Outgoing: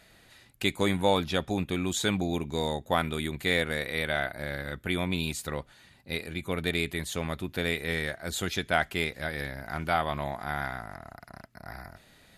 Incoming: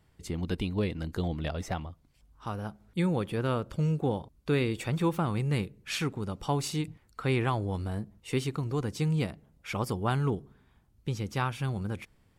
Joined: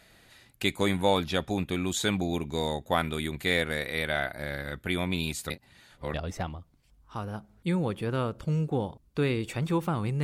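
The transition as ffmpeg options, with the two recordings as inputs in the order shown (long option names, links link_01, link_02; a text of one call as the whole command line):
ffmpeg -i cue0.wav -i cue1.wav -filter_complex "[0:a]apad=whole_dur=10.23,atrim=end=10.23,asplit=2[link_01][link_02];[link_01]atrim=end=5.502[link_03];[link_02]atrim=start=5.498:end=6.142,asetpts=PTS-STARTPTS,areverse[link_04];[1:a]atrim=start=1.448:end=5.54[link_05];[link_03][link_04]acrossfade=duration=0.004:curve1=hsin:curve2=hsin[link_06];[link_06][link_05]acrossfade=duration=0.004:curve1=hsin:curve2=hsin" out.wav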